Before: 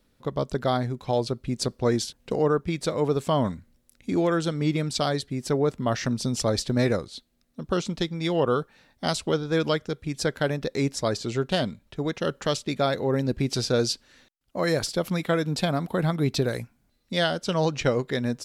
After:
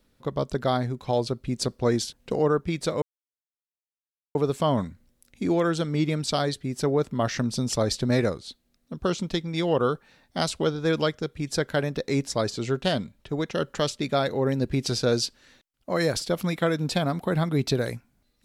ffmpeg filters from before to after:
-filter_complex "[0:a]asplit=2[s0][s1];[s0]atrim=end=3.02,asetpts=PTS-STARTPTS,afade=t=out:st=3.016:d=0.004:c=hsin,apad=pad_dur=1.33[s2];[s1]atrim=start=3.02,asetpts=PTS-STARTPTS,afade=t=in:d=0.004:c=hsin[s3];[s2][s3]concat=n=2:v=0:a=1"

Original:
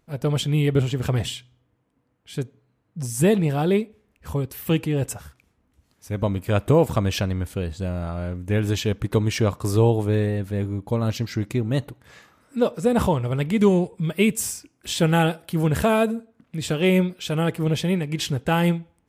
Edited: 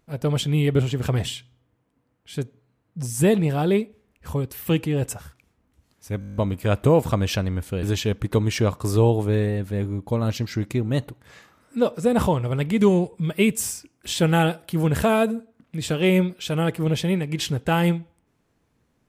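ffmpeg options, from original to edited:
-filter_complex "[0:a]asplit=10[s0][s1][s2][s3][s4][s5][s6][s7][s8][s9];[s0]atrim=end=6.222[s10];[s1]atrim=start=6.198:end=6.222[s11];[s2]atrim=start=6.198:end=6.222[s12];[s3]atrim=start=6.198:end=6.222[s13];[s4]atrim=start=6.198:end=6.222[s14];[s5]atrim=start=6.198:end=6.222[s15];[s6]atrim=start=6.198:end=6.222[s16];[s7]atrim=start=6.198:end=6.222[s17];[s8]atrim=start=6.198:end=7.672[s18];[s9]atrim=start=8.628[s19];[s10][s11]acrossfade=d=0.004:c1=hsin:c2=hsin[s20];[s20][s12]acrossfade=d=0.004:c1=hsin:c2=hsin[s21];[s21][s13]acrossfade=d=0.004:c1=hsin:c2=hsin[s22];[s22][s14]acrossfade=d=0.004:c1=hsin:c2=hsin[s23];[s23][s15]acrossfade=d=0.004:c1=hsin:c2=hsin[s24];[s24][s16]acrossfade=d=0.004:c1=hsin:c2=hsin[s25];[s25][s17]acrossfade=d=0.004:c1=hsin:c2=hsin[s26];[s26][s18]acrossfade=d=0.004:c1=hsin:c2=hsin[s27];[s27][s19]acrossfade=d=0.004:c1=hsin:c2=hsin"

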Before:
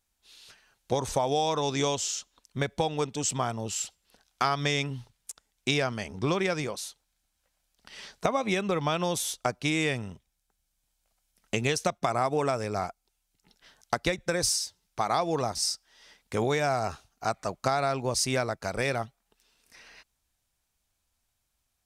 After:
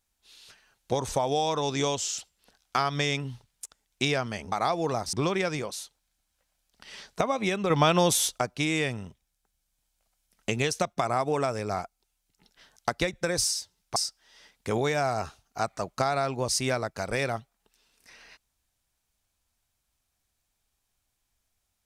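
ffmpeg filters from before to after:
-filter_complex "[0:a]asplit=7[s0][s1][s2][s3][s4][s5][s6];[s0]atrim=end=2.182[s7];[s1]atrim=start=3.838:end=6.182[s8];[s2]atrim=start=15.008:end=15.622[s9];[s3]atrim=start=6.178:end=8.752[s10];[s4]atrim=start=8.748:end=9.432,asetpts=PTS-STARTPTS,volume=2.11[s11];[s5]atrim=start=9.428:end=15.012[s12];[s6]atrim=start=15.618[s13];[s7][s8]acrossfade=d=0.004:c1=hsin:c2=hsin[s14];[s14][s9]acrossfade=d=0.004:c1=hsin:c2=hsin[s15];[s15][s10]acrossfade=d=0.004:c1=hsin:c2=hsin[s16];[s16][s11]acrossfade=d=0.004:c1=hsin:c2=hsin[s17];[s17][s12]acrossfade=d=0.004:c1=hsin:c2=hsin[s18];[s18][s13]acrossfade=d=0.004:c1=hsin:c2=hsin"

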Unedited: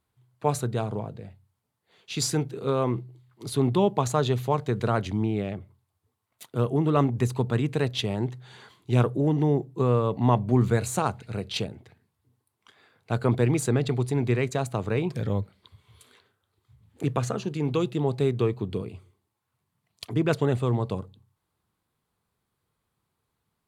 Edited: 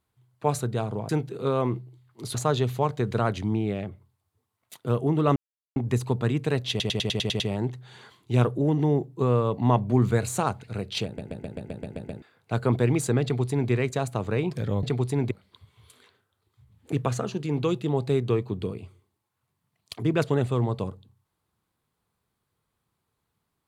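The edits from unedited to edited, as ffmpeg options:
-filter_complex "[0:a]asplit=22[s0][s1][s2][s3][s4][s5][s6][s7][s8][s9][s10][s11][s12][s13][s14][s15][s16][s17][s18][s19][s20][s21];[s0]atrim=end=1.092[s22];[s1]atrim=start=2.308:end=3.572[s23];[s2]atrim=start=4.038:end=7.05,asetpts=PTS-STARTPTS,afade=t=out:st=3.008:d=0.004:c=hsin,apad=pad_dur=0.4[s24];[s3]atrim=start=7.05:end=8.092,asetpts=PTS-STARTPTS,afade=t=in:d=0.004:c=hsin[s25];[s4]atrim=start=7.988:end=8.092[s26];[s5]atrim=start=7.988:end=8.092[s27];[s6]atrim=start=7.988:end=8.092[s28];[s7]atrim=start=7.988:end=8.092[s29];[s8]atrim=start=7.988:end=8.092[s30];[s9]atrim=start=7.988:end=8.092[s31];[s10]atrim=start=7.988:end=11.772[s32];[s11]atrim=start=11.638:end=11.772[s33];[s12]atrim=start=11.638:end=11.772[s34];[s13]atrim=start=11.638:end=11.772[s35];[s14]atrim=start=11.638:end=11.772[s36];[s15]atrim=start=11.638:end=11.772[s37];[s16]atrim=start=11.638:end=11.772[s38];[s17]atrim=start=11.638:end=11.772[s39];[s18]atrim=start=11.638:end=11.772[s40];[s19]atrim=start=12.808:end=15.422[s41];[s20]atrim=start=13.818:end=14.302[s42];[s21]atrim=start=15.418[s43];[s22][s23]acrossfade=d=0.004:c1=hsin:c2=hsin[s44];[s24][s25]concat=n=2:v=0:a=1[s45];[s44][s45]acrossfade=d=0.004:c1=hsin:c2=hsin[s46];[s46][s26]acrossfade=d=0.004:c1=hsin:c2=hsin[s47];[s47][s27]acrossfade=d=0.004:c1=hsin:c2=hsin[s48];[s48][s28]acrossfade=d=0.004:c1=hsin:c2=hsin[s49];[s49][s29]acrossfade=d=0.004:c1=hsin:c2=hsin[s50];[s50][s30]acrossfade=d=0.004:c1=hsin:c2=hsin[s51];[s51][s31]acrossfade=d=0.004:c1=hsin:c2=hsin[s52];[s52][s32]acrossfade=d=0.004:c1=hsin:c2=hsin[s53];[s53][s33]acrossfade=d=0.004:c1=hsin:c2=hsin[s54];[s54][s34]acrossfade=d=0.004:c1=hsin:c2=hsin[s55];[s55][s35]acrossfade=d=0.004:c1=hsin:c2=hsin[s56];[s56][s36]acrossfade=d=0.004:c1=hsin:c2=hsin[s57];[s57][s37]acrossfade=d=0.004:c1=hsin:c2=hsin[s58];[s58][s38]acrossfade=d=0.004:c1=hsin:c2=hsin[s59];[s59][s39]acrossfade=d=0.004:c1=hsin:c2=hsin[s60];[s60][s40]acrossfade=d=0.004:c1=hsin:c2=hsin[s61];[s61][s41]acrossfade=d=0.004:c1=hsin:c2=hsin[s62];[s62][s42]acrossfade=d=0.004:c1=hsin:c2=hsin[s63];[s63][s43]acrossfade=d=0.004:c1=hsin:c2=hsin"

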